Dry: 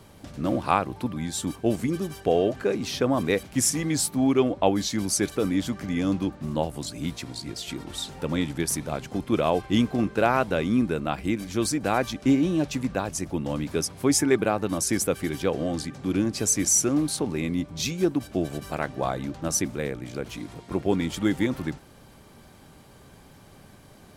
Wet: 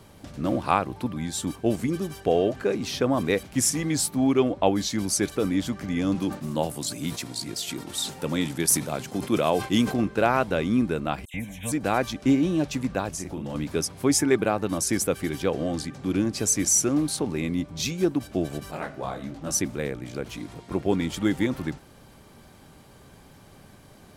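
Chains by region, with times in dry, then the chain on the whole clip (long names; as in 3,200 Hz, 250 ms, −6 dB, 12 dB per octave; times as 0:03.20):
0:06.15–0:09.94: high-pass filter 110 Hz + high-shelf EQ 6,100 Hz +10 dB + level that may fall only so fast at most 140 dB per second
0:11.25–0:11.72: high-shelf EQ 11,000 Hz +3 dB + phaser with its sweep stopped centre 1,300 Hz, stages 6 + all-pass dispersion lows, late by 89 ms, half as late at 2,900 Hz
0:13.10–0:13.55: double-tracking delay 37 ms −4 dB + downward compressor 4 to 1, threshold −29 dBFS
0:18.71–0:19.51: hum removal 92.67 Hz, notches 36 + micro pitch shift up and down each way 47 cents
whole clip: no processing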